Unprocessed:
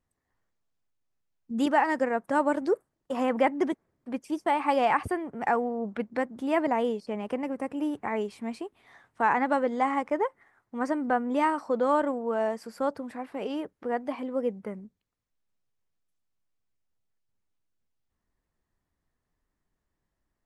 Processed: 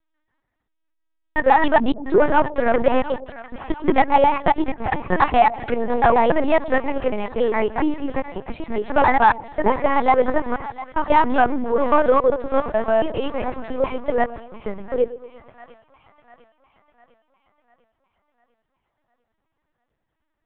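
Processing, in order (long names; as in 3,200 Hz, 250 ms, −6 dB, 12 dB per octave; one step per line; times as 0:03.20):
slices reordered back to front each 137 ms, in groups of 5
low-shelf EQ 490 Hz −4 dB
leveller curve on the samples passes 1
echo with a time of its own for lows and highs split 730 Hz, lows 115 ms, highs 700 ms, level −15 dB
linear-prediction vocoder at 8 kHz pitch kept
level +8.5 dB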